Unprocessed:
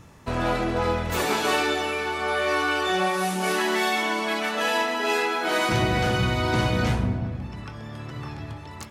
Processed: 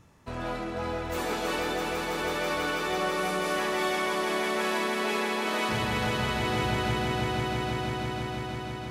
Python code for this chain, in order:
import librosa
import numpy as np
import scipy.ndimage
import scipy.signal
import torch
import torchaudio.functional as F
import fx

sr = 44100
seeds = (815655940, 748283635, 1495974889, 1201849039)

y = fx.fade_out_tail(x, sr, length_s=2.79)
y = fx.echo_swell(y, sr, ms=164, loudest=5, wet_db=-6.5)
y = y * librosa.db_to_amplitude(-9.0)